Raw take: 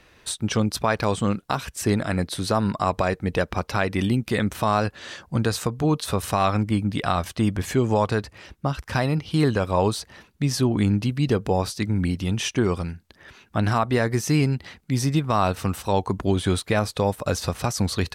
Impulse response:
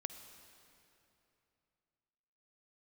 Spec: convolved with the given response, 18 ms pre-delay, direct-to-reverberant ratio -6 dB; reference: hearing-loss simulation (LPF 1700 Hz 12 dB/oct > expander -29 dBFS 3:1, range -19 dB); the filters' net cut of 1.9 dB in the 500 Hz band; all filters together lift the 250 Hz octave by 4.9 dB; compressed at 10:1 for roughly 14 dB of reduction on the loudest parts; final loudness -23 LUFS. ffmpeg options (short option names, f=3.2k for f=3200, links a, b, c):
-filter_complex "[0:a]equalizer=f=250:t=o:g=7.5,equalizer=f=500:t=o:g=-5,acompressor=threshold=-28dB:ratio=10,asplit=2[a][b];[1:a]atrim=start_sample=2205,adelay=18[c];[b][c]afir=irnorm=-1:irlink=0,volume=8dB[d];[a][d]amix=inputs=2:normalize=0,lowpass=1.7k,agate=range=-19dB:threshold=-29dB:ratio=3,volume=4dB"